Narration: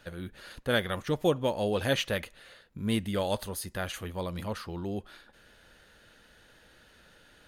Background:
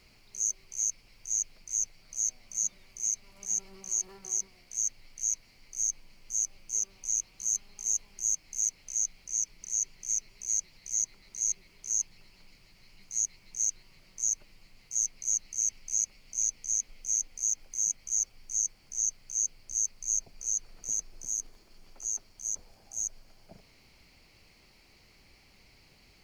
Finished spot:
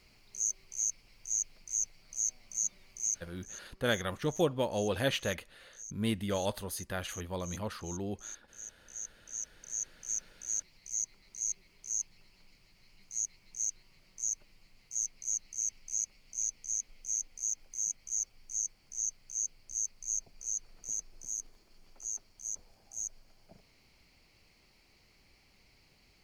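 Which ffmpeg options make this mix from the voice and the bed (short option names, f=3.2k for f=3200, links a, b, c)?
-filter_complex "[0:a]adelay=3150,volume=-3dB[a];[1:a]volume=9.5dB,afade=t=out:st=3.15:d=0.36:silence=0.188365,afade=t=in:st=8.67:d=1.43:silence=0.251189[b];[a][b]amix=inputs=2:normalize=0"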